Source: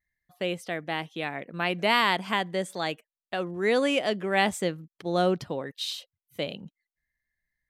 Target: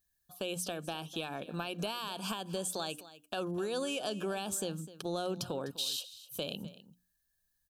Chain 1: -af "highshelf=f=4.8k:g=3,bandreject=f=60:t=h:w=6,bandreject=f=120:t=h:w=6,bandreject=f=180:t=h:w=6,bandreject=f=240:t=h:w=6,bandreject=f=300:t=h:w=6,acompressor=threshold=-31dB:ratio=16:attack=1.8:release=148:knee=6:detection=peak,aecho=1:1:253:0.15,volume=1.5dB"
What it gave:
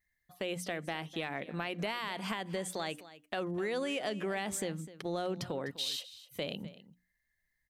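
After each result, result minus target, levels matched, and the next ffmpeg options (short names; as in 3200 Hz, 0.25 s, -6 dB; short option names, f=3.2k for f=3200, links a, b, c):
2000 Hz band +5.0 dB; 8000 Hz band -4.0 dB
-af "highshelf=f=4.8k:g=3,bandreject=f=60:t=h:w=6,bandreject=f=120:t=h:w=6,bandreject=f=180:t=h:w=6,bandreject=f=240:t=h:w=6,bandreject=f=300:t=h:w=6,acompressor=threshold=-31dB:ratio=16:attack=1.8:release=148:knee=6:detection=peak,asuperstop=centerf=2000:order=4:qfactor=2.4,aecho=1:1:253:0.15,volume=1.5dB"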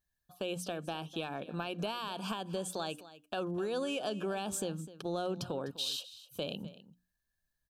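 8000 Hz band -3.5 dB
-af "highshelf=f=4.8k:g=14.5,bandreject=f=60:t=h:w=6,bandreject=f=120:t=h:w=6,bandreject=f=180:t=h:w=6,bandreject=f=240:t=h:w=6,bandreject=f=300:t=h:w=6,acompressor=threshold=-31dB:ratio=16:attack=1.8:release=148:knee=6:detection=peak,asuperstop=centerf=2000:order=4:qfactor=2.4,aecho=1:1:253:0.15,volume=1.5dB"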